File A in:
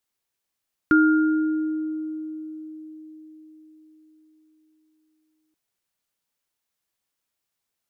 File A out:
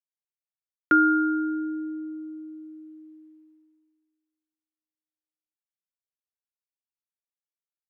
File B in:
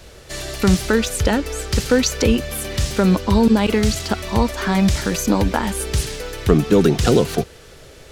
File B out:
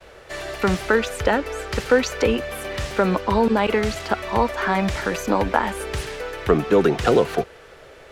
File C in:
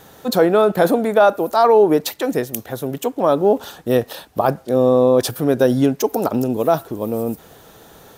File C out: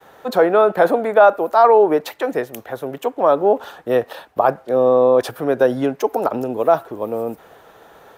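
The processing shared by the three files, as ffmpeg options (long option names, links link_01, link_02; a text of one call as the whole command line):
ffmpeg -i in.wav -filter_complex "[0:a]agate=range=-33dB:threshold=-44dB:ratio=3:detection=peak,acrossover=split=410 2600:gain=0.251 1 0.2[link_01][link_02][link_03];[link_01][link_02][link_03]amix=inputs=3:normalize=0,volume=3dB" out.wav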